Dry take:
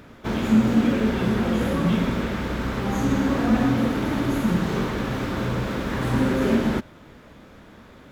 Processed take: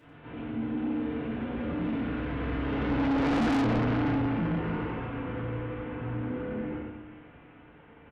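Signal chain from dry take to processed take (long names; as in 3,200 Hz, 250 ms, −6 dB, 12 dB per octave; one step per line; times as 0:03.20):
linear delta modulator 16 kbit/s, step −31 dBFS
source passing by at 0:03.43, 16 m/s, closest 4.5 metres
on a send: single-tap delay 92 ms −4 dB
on the sum: feedback delay network reverb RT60 0.83 s, low-frequency decay 1.35×, high-frequency decay 0.6×, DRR −7 dB
soft clipping −21.5 dBFS, distortion −2 dB
level −2.5 dB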